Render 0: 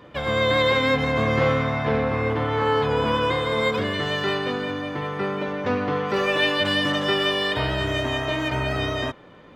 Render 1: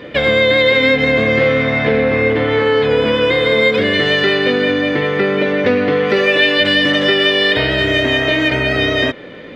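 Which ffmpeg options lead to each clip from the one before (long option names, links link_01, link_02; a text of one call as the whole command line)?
ffmpeg -i in.wav -af "acompressor=threshold=-26dB:ratio=4,equalizer=frequency=250:width_type=o:width=1:gain=6,equalizer=frequency=500:width_type=o:width=1:gain=9,equalizer=frequency=1000:width_type=o:width=1:gain=-7,equalizer=frequency=2000:width_type=o:width=1:gain=11,equalizer=frequency=4000:width_type=o:width=1:gain=7,equalizer=frequency=8000:width_type=o:width=1:gain=-3,volume=7.5dB" out.wav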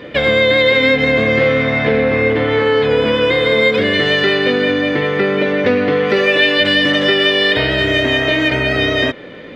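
ffmpeg -i in.wav -af anull out.wav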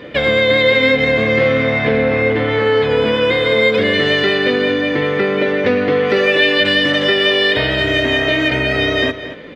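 ffmpeg -i in.wav -filter_complex "[0:a]asplit=2[link_01][link_02];[link_02]adelay=227.4,volume=-12dB,highshelf=frequency=4000:gain=-5.12[link_03];[link_01][link_03]amix=inputs=2:normalize=0,volume=-1dB" out.wav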